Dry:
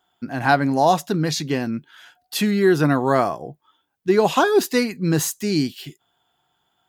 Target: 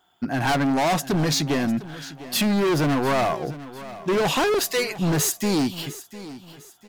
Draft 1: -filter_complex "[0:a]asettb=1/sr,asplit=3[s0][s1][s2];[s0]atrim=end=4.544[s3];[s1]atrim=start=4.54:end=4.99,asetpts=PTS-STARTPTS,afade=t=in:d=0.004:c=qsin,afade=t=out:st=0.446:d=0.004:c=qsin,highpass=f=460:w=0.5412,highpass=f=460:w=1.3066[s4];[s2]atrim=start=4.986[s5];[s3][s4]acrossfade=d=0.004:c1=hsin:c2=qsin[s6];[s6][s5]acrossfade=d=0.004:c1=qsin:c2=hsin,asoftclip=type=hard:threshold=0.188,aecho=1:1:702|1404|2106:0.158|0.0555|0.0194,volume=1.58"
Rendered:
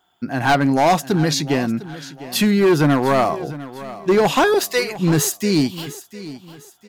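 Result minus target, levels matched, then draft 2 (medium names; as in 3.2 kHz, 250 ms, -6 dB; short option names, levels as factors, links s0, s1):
hard clipper: distortion -7 dB
-filter_complex "[0:a]asettb=1/sr,asplit=3[s0][s1][s2];[s0]atrim=end=4.544[s3];[s1]atrim=start=4.54:end=4.99,asetpts=PTS-STARTPTS,afade=t=in:d=0.004:c=qsin,afade=t=out:st=0.446:d=0.004:c=qsin,highpass=f=460:w=0.5412,highpass=f=460:w=1.3066[s4];[s2]atrim=start=4.986[s5];[s3][s4]acrossfade=d=0.004:c1=hsin:c2=qsin[s6];[s6][s5]acrossfade=d=0.004:c1=qsin:c2=hsin,asoftclip=type=hard:threshold=0.0708,aecho=1:1:702|1404|2106:0.158|0.0555|0.0194,volume=1.58"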